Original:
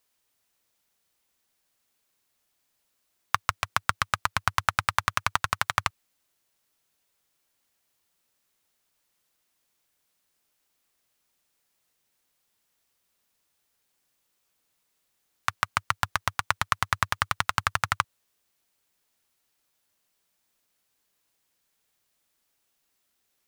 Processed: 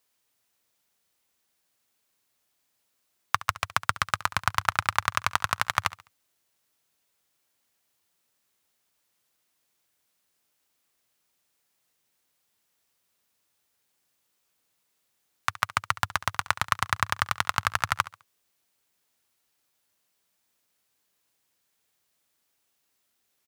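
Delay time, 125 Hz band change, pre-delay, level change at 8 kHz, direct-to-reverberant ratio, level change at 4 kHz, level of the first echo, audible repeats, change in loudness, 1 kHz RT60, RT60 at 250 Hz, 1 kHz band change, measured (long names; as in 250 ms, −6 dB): 69 ms, −0.5 dB, no reverb audible, 0.0 dB, no reverb audible, 0.0 dB, −17.5 dB, 2, 0.0 dB, no reverb audible, no reverb audible, 0.0 dB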